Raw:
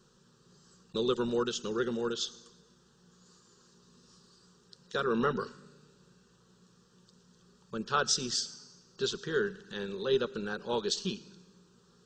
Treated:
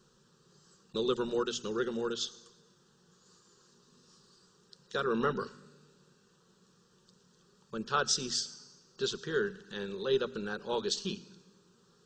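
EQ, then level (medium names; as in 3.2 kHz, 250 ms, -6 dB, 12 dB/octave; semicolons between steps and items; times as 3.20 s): hum notches 60/120/180/240 Hz; -1.0 dB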